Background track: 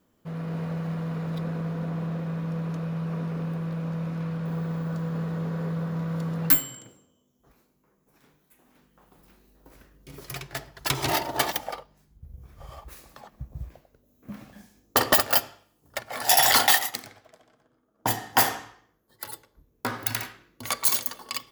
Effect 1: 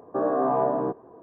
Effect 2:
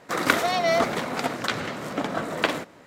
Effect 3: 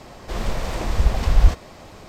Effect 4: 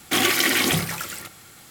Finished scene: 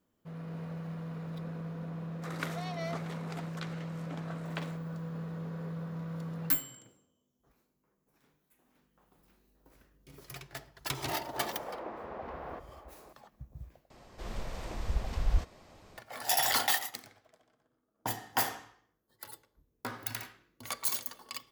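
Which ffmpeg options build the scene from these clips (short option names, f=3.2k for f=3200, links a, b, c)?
-filter_complex "[3:a]asplit=2[a][b];[0:a]volume=-9.5dB[c];[a]asuperpass=centerf=670:order=4:qfactor=0.57[d];[c]asplit=2[e][f];[e]atrim=end=13.904[g];[b]atrim=end=2.08,asetpts=PTS-STARTPTS,volume=-14dB[h];[f]atrim=start=15.976[i];[2:a]atrim=end=2.86,asetpts=PTS-STARTPTS,volume=-17.5dB,afade=t=in:d=0.004:c=hsin,afade=t=out:st=2.856:d=0.004:c=hsin,adelay=2130[j];[d]atrim=end=2.08,asetpts=PTS-STARTPTS,volume=-10dB,afade=t=in:d=0.004:c=hsin,afade=t=out:st=2.076:d=0.004:c=hsin,adelay=11050[k];[g][h]acrossfade=d=0.004:c1=hsin:c2=hsin[l];[l][i]acrossfade=d=0.004:c1=hsin:c2=hsin[m];[m][j][k]amix=inputs=3:normalize=0"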